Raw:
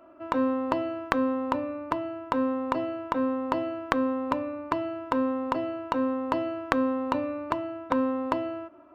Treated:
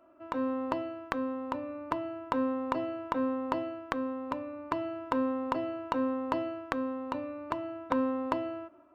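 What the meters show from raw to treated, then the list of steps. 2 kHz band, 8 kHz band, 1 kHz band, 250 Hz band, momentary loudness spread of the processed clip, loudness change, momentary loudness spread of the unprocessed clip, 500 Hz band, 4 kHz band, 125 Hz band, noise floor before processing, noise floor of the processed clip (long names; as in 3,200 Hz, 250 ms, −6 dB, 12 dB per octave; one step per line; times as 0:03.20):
−6.0 dB, can't be measured, −5.0 dB, −5.0 dB, 6 LU, −5.0 dB, 5 LU, −5.0 dB, −5.5 dB, −5.0 dB, −51 dBFS, −56 dBFS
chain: automatic gain control gain up to 5.5 dB
level −8 dB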